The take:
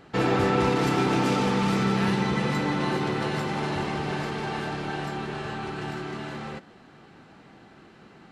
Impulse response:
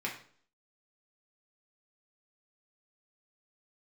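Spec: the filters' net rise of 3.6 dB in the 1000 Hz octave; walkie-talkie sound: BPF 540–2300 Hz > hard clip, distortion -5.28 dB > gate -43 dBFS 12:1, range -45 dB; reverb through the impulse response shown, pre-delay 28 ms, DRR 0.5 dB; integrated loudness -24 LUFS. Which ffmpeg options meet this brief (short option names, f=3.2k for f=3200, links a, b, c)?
-filter_complex "[0:a]equalizer=f=1k:t=o:g=5.5,asplit=2[a][b];[1:a]atrim=start_sample=2205,adelay=28[c];[b][c]afir=irnorm=-1:irlink=0,volume=-5dB[d];[a][d]amix=inputs=2:normalize=0,highpass=540,lowpass=2.3k,asoftclip=type=hard:threshold=-30dB,agate=range=-45dB:threshold=-43dB:ratio=12,volume=8dB"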